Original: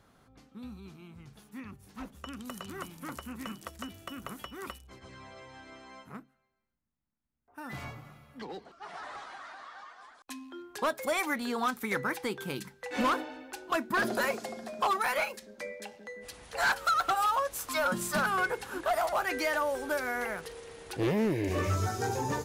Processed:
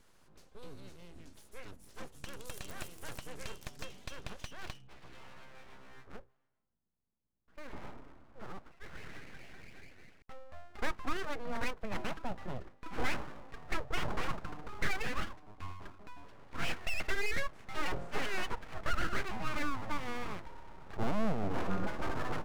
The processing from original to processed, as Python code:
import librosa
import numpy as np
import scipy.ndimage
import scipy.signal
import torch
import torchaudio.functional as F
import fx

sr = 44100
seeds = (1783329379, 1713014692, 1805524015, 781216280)

y = fx.filter_sweep_lowpass(x, sr, from_hz=10000.0, to_hz=1000.0, start_s=2.99, end_s=6.14, q=1.0)
y = np.abs(y)
y = fx.bass_treble(y, sr, bass_db=4, treble_db=5)
y = y * librosa.db_to_amplitude(-2.5)